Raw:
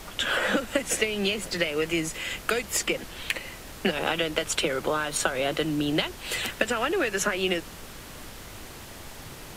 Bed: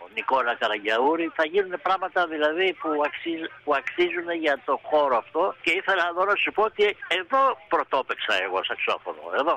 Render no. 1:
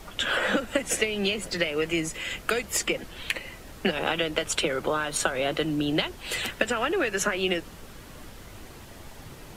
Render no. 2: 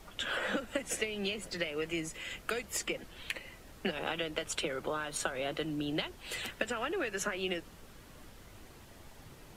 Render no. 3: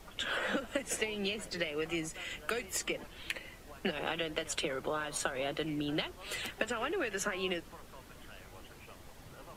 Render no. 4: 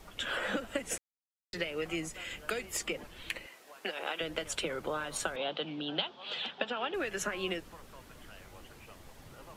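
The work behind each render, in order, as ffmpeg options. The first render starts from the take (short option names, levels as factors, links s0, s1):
-af "afftdn=nr=6:nf=-43"
-af "volume=0.355"
-filter_complex "[1:a]volume=0.0282[s0];[0:a][s0]amix=inputs=2:normalize=0"
-filter_complex "[0:a]asettb=1/sr,asplit=3[s0][s1][s2];[s0]atrim=end=3.464[s3];[s1]atrim=start=3.46:end=4.21,asetpts=PTS-STARTPTS,afade=t=in:d=0.004:c=qsin,afade=t=out:st=0.746:d=0.004:c=qsin,highpass=450[s4];[s2]atrim=start=4.206[s5];[s3][s4]acrossfade=d=0.004:c1=hsin:c2=qsin[s6];[s6][s5]acrossfade=d=0.004:c1=qsin:c2=hsin,asettb=1/sr,asplit=3[s7][s8][s9];[s7]atrim=end=5.364[s10];[s8]atrim=start=5.36:end=6.94,asetpts=PTS-STARTPTS,afade=t=in:d=0.004:c=qsin,afade=t=out:st=1.576:d=0.004:c=qsin,highpass=f=170:w=0.5412,highpass=f=170:w=1.3066,equalizer=f=340:t=q:w=4:g=-8,equalizer=f=830:t=q:w=4:g=6,equalizer=f=2000:t=q:w=4:g=-7,equalizer=f=3400:t=q:w=4:g=10,lowpass=f=4400:w=0.5412,lowpass=f=4400:w=1.3066[s11];[s9]atrim=start=6.936[s12];[s10][s11]acrossfade=d=0.004:c1=hsin:c2=qsin[s13];[s13][s12]acrossfade=d=0.004:c1=qsin:c2=hsin,asplit=3[s14][s15][s16];[s14]atrim=end=0.98,asetpts=PTS-STARTPTS,afade=t=out:st=0.976:d=0.004:c=hsin[s17];[s15]atrim=start=0.98:end=1.53,asetpts=PTS-STARTPTS,volume=0[s18];[s16]atrim=start=1.53,asetpts=PTS-STARTPTS,afade=t=in:d=0.004:c=hsin[s19];[s17][s18][s19]concat=n=3:v=0:a=1"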